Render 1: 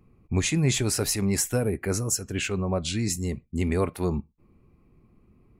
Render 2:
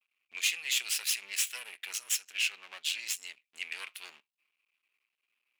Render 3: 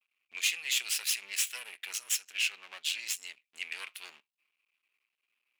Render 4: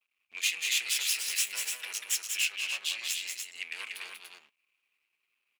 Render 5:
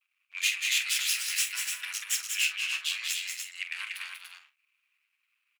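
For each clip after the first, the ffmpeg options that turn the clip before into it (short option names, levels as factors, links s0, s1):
-af "aeval=exprs='max(val(0),0)':c=same,agate=range=0.0224:threshold=0.00126:ratio=3:detection=peak,highpass=f=2700:t=q:w=2.9"
-af anull
-af "aecho=1:1:189.5|291.5:0.562|0.562"
-filter_complex "[0:a]highpass=f=1400:t=q:w=1.7,asplit=2[s0][s1];[s1]adelay=45,volume=0.282[s2];[s0][s2]amix=inputs=2:normalize=0"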